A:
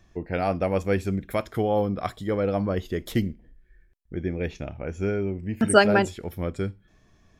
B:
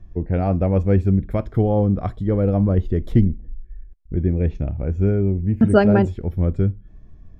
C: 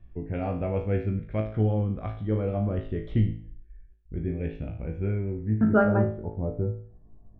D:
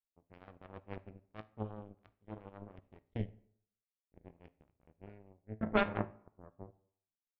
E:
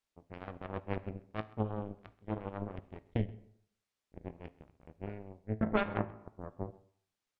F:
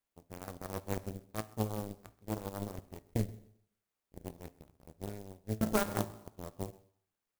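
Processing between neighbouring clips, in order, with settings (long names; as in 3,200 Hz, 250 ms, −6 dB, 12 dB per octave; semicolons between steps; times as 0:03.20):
spectral tilt −4.5 dB per octave; level −2 dB
tuned comb filter 54 Hz, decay 0.49 s, harmonics all, mix 90%; low-pass filter sweep 2,900 Hz → 790 Hz, 0:04.85–0:06.46
power curve on the samples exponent 3; on a send at −19 dB: convolution reverb RT60 0.65 s, pre-delay 45 ms; on the sum: level −3 dB
downward compressor 3 to 1, threshold −40 dBFS, peak gain reduction 13 dB; high-frequency loss of the air 58 metres; single-tap delay 131 ms −22 dB; level +11 dB
converter with an unsteady clock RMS 0.078 ms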